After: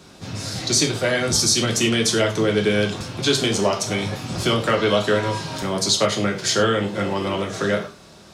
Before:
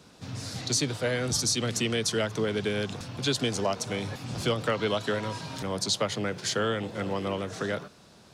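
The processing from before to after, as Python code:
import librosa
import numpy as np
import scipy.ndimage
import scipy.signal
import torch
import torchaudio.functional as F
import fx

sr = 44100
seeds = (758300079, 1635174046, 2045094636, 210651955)

y = fx.rev_gated(x, sr, seeds[0], gate_ms=130, shape='falling', drr_db=1.5)
y = F.gain(torch.from_numpy(y), 6.5).numpy()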